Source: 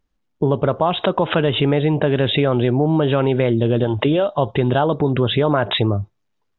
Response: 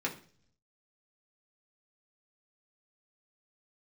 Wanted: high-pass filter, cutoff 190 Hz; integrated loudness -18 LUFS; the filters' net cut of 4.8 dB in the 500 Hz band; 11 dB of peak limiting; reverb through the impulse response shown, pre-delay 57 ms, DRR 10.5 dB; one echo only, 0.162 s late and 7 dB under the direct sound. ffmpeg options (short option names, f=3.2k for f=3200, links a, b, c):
-filter_complex "[0:a]highpass=190,equalizer=f=500:t=o:g=-6,alimiter=limit=-16.5dB:level=0:latency=1,aecho=1:1:162:0.447,asplit=2[a][b];[1:a]atrim=start_sample=2205,adelay=57[c];[b][c]afir=irnorm=-1:irlink=0,volume=-15.5dB[d];[a][d]amix=inputs=2:normalize=0,volume=7dB"